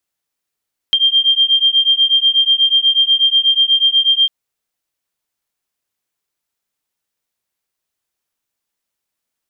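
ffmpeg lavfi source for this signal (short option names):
-f lavfi -i "aevalsrc='0.224*(sin(2*PI*3180*t)+sin(2*PI*3188.2*t))':d=3.35:s=44100"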